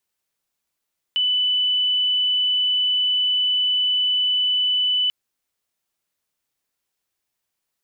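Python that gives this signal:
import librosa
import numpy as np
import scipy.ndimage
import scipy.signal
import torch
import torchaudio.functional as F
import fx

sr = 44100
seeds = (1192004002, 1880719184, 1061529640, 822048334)

y = 10.0 ** (-17.0 / 20.0) * np.sin(2.0 * np.pi * (2990.0 * (np.arange(round(3.94 * sr)) / sr)))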